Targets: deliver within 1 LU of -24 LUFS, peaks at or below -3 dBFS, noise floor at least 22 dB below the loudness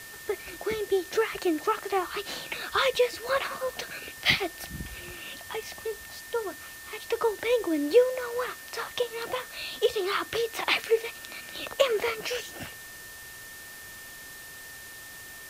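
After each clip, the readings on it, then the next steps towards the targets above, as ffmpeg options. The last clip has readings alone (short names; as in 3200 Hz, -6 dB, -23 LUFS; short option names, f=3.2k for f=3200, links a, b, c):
steady tone 1800 Hz; tone level -45 dBFS; noise floor -44 dBFS; noise floor target -51 dBFS; loudness -29.0 LUFS; peak -8.5 dBFS; loudness target -24.0 LUFS
-> -af "bandreject=f=1.8k:w=30"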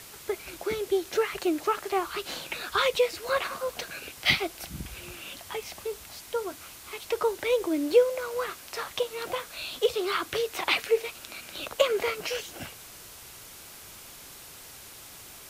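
steady tone none; noise floor -47 dBFS; noise floor target -51 dBFS
-> -af "afftdn=nr=6:nf=-47"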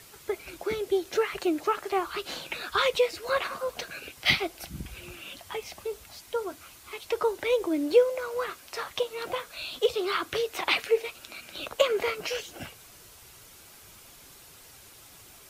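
noise floor -52 dBFS; loudness -29.0 LUFS; peak -8.5 dBFS; loudness target -24.0 LUFS
-> -af "volume=5dB"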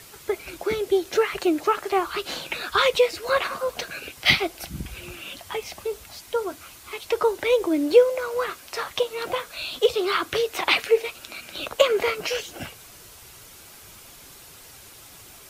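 loudness -24.0 LUFS; peak -3.5 dBFS; noise floor -47 dBFS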